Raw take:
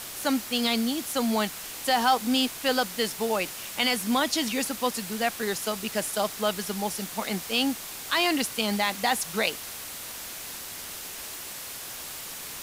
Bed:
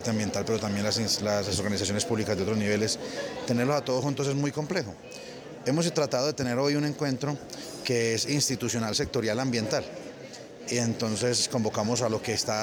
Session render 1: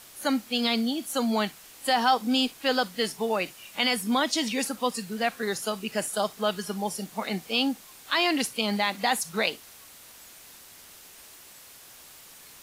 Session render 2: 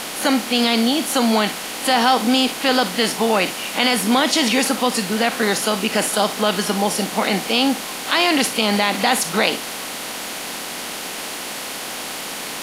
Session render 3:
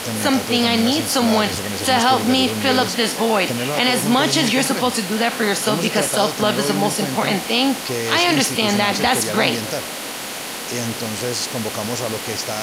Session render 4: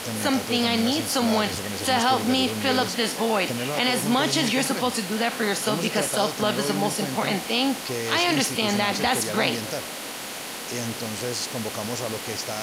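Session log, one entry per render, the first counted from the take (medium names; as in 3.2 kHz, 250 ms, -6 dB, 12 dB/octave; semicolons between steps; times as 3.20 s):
noise print and reduce 11 dB
spectral levelling over time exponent 0.6; in parallel at +2 dB: peak limiter -15.5 dBFS, peak gain reduction 9 dB
add bed +1.5 dB
trim -5.5 dB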